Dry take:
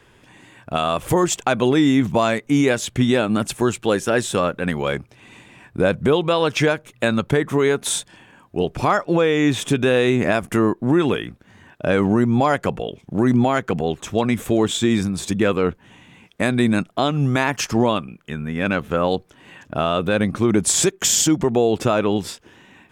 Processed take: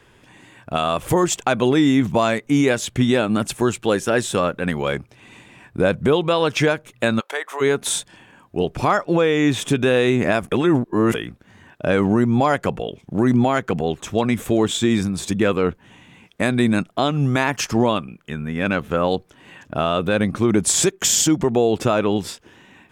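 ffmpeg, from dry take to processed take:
-filter_complex "[0:a]asplit=3[s0][s1][s2];[s0]afade=t=out:st=7.19:d=0.02[s3];[s1]highpass=f=600:w=0.5412,highpass=f=600:w=1.3066,afade=t=in:st=7.19:d=0.02,afade=t=out:st=7.6:d=0.02[s4];[s2]afade=t=in:st=7.6:d=0.02[s5];[s3][s4][s5]amix=inputs=3:normalize=0,asplit=3[s6][s7][s8];[s6]atrim=end=10.522[s9];[s7]atrim=start=10.518:end=11.142,asetpts=PTS-STARTPTS,areverse[s10];[s8]atrim=start=11.138[s11];[s9][s10]acrossfade=d=0.004:c1=hsin:c2=hsin[s12];[s12][s11]acrossfade=d=0.004:c1=hsin:c2=hsin"

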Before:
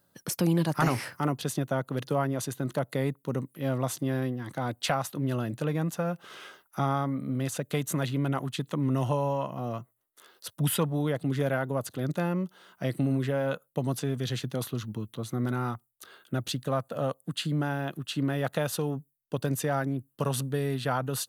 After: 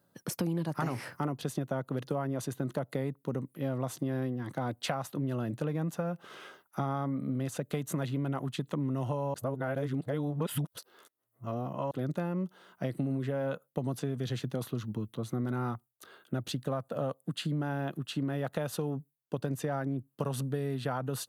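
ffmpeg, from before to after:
-filter_complex "[0:a]asettb=1/sr,asplit=3[s0][s1][s2];[s0]atrim=end=19.394[s3];[s1]atrim=start=19.39:end=20.13,asetpts=PTS-STARTPTS,afade=t=in:d=0.004:c=qsin,afade=t=out:st=0.736:d=0.004:c=qsin,highshelf=f=7000:g=-3.5[s4];[s2]atrim=start=20.126[s5];[s3][s4]acrossfade=d=0.004:c1=hsin:c2=qsin[s6];[s6][s5]acrossfade=d=0.004:c1=qsin:c2=hsin,asplit=3[s7][s8][s9];[s7]atrim=end=9.342[s10];[s8]atrim=start=9.338:end=11.912,asetpts=PTS-STARTPTS,areverse[s11];[s9]atrim=start=11.908[s12];[s10][s11]acrossfade=d=0.004:c1=hsin:c2=hsin[s13];[s13][s12]acrossfade=d=0.004:c1=hsin:c2=hsin,highpass=91,tiltshelf=f=1500:g=3.5,acompressor=threshold=0.0501:ratio=6,volume=0.75"

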